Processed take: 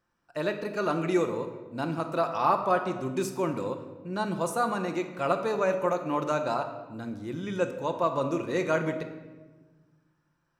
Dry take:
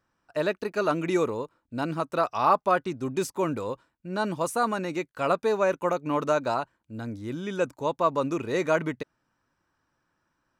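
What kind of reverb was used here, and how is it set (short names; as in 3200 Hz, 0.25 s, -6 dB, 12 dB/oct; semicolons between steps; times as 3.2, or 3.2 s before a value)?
shoebox room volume 980 m³, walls mixed, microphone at 0.85 m; gain -3 dB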